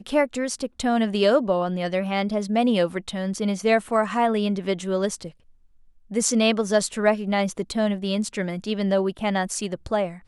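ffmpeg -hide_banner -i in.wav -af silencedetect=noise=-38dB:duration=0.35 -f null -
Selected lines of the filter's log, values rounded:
silence_start: 5.30
silence_end: 6.11 | silence_duration: 0.81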